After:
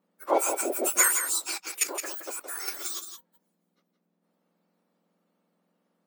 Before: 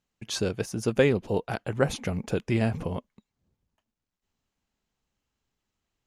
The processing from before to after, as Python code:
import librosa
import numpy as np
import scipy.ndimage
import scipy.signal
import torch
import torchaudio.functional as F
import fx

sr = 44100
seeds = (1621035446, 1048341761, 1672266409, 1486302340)

y = fx.octave_mirror(x, sr, pivot_hz=1900.0)
y = fx.level_steps(y, sr, step_db=14, at=(1.51, 2.68))
y = fx.wow_flutter(y, sr, seeds[0], rate_hz=2.1, depth_cents=15.0)
y = y + 10.0 ** (-8.0 / 20.0) * np.pad(y, (int(168 * sr / 1000.0), 0))[:len(y)]
y = F.gain(torch.from_numpy(y), 6.5).numpy()